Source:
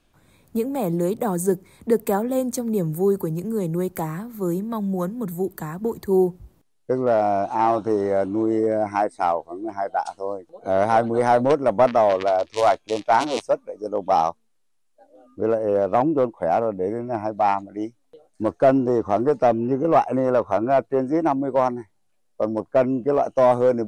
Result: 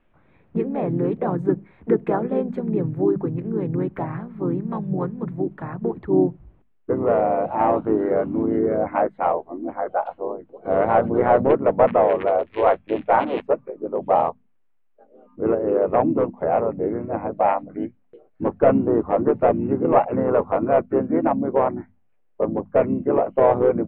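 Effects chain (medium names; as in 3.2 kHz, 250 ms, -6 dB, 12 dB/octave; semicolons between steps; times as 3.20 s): inverse Chebyshev low-pass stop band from 5.3 kHz, stop band 40 dB; hum notches 50/100/150/200/250 Hz; harmony voices -5 st -5 dB, -3 st -6 dB; trim -1.5 dB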